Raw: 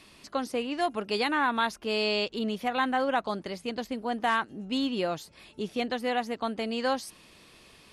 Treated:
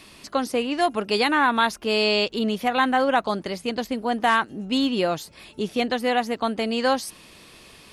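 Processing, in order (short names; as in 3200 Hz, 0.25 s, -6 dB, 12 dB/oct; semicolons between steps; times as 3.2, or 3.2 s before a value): high shelf 11000 Hz +5 dB; gain +6.5 dB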